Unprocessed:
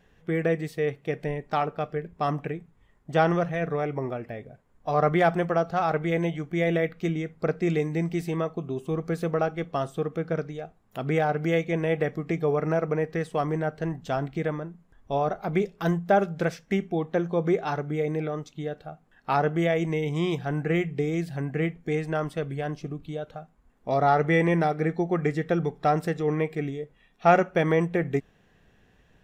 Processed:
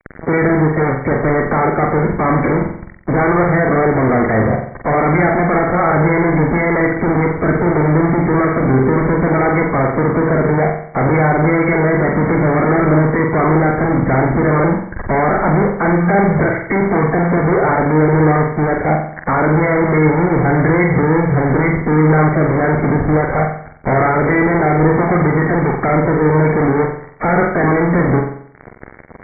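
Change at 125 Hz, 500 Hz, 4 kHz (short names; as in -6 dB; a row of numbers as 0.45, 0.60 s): +14.5 dB, +11.0 dB, under -40 dB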